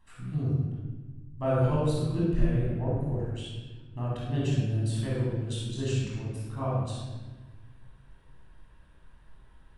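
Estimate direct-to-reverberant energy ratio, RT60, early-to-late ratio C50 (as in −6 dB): −7.0 dB, 1.3 s, −2.5 dB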